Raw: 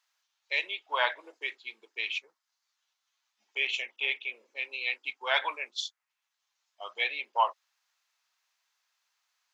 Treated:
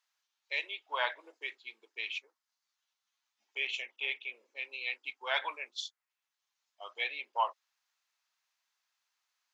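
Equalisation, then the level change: brick-wall FIR high-pass 210 Hz; -5.0 dB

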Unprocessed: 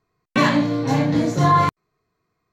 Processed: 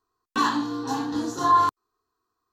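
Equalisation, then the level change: tilt shelf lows -8 dB, about 940 Hz; high shelf 2100 Hz -9 dB; fixed phaser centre 590 Hz, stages 6; 0.0 dB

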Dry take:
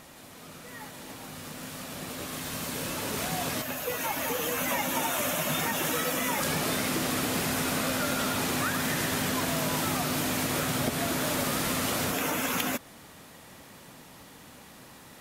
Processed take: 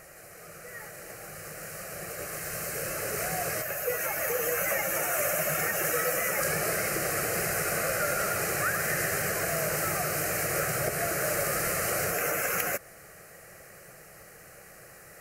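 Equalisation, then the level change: bell 78 Hz -5.5 dB 1.1 oct; fixed phaser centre 950 Hz, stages 6; +3.5 dB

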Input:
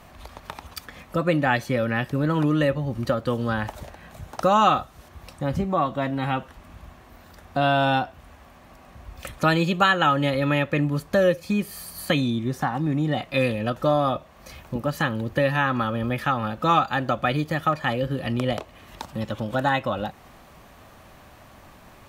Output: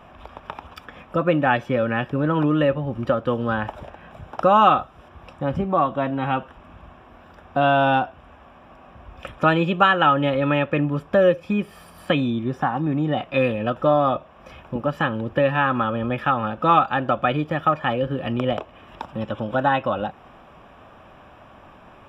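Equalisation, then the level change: polynomial smoothing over 25 samples; low shelf 180 Hz -7 dB; bell 2000 Hz -10 dB 0.27 oct; +4.0 dB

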